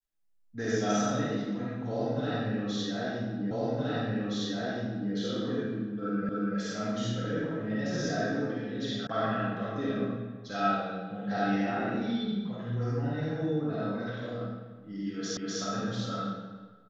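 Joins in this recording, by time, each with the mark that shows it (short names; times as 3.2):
3.51 repeat of the last 1.62 s
6.29 repeat of the last 0.29 s
9.07 sound cut off
15.37 repeat of the last 0.25 s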